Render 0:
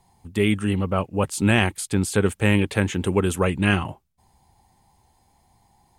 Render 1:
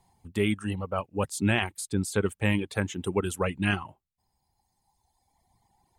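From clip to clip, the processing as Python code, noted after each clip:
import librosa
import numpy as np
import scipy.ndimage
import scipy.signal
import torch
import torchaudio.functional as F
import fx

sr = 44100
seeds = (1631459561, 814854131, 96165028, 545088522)

y = fx.dereverb_blind(x, sr, rt60_s=1.9)
y = F.gain(torch.from_numpy(y), -5.0).numpy()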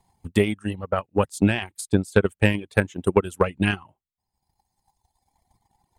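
y = fx.transient(x, sr, attack_db=12, sustain_db=-7)
y = F.gain(torch.from_numpy(y), -1.0).numpy()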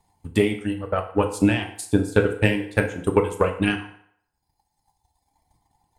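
y = fx.rev_fdn(x, sr, rt60_s=0.67, lf_ratio=0.75, hf_ratio=0.8, size_ms=20.0, drr_db=3.5)
y = F.gain(torch.from_numpy(y), -1.0).numpy()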